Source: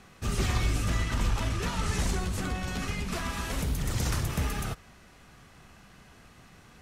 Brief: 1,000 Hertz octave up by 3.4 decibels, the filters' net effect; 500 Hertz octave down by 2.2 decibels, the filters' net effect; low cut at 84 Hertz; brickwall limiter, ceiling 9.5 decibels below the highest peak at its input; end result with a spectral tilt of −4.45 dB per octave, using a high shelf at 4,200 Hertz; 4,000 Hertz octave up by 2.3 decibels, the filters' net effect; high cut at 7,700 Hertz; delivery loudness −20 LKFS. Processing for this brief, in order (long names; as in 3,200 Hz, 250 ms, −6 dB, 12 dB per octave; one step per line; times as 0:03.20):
high-pass filter 84 Hz
low-pass filter 7,700 Hz
parametric band 500 Hz −4.5 dB
parametric band 1,000 Hz +5.5 dB
parametric band 4,000 Hz +7 dB
high-shelf EQ 4,200 Hz −7 dB
level +15.5 dB
brickwall limiter −11 dBFS